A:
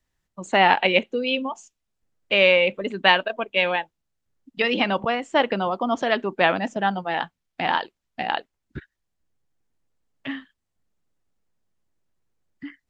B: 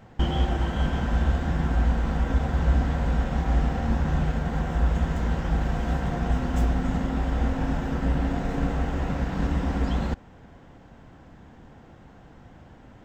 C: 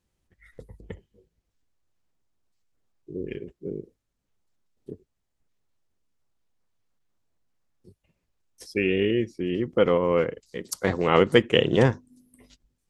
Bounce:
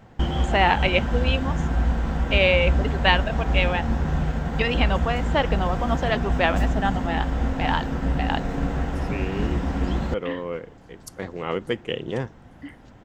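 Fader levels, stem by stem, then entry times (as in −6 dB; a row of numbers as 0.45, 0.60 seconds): −2.5, +0.5, −8.5 decibels; 0.00, 0.00, 0.35 seconds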